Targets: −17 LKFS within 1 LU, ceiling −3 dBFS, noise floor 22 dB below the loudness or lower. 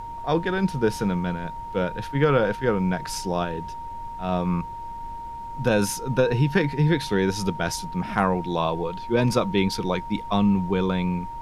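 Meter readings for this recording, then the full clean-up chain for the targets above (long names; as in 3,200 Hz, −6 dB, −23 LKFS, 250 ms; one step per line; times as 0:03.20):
interfering tone 930 Hz; level of the tone −33 dBFS; background noise floor −35 dBFS; target noise floor −47 dBFS; integrated loudness −24.5 LKFS; sample peak −6.0 dBFS; target loudness −17.0 LKFS
→ notch filter 930 Hz, Q 30
noise reduction from a noise print 12 dB
level +7.5 dB
brickwall limiter −3 dBFS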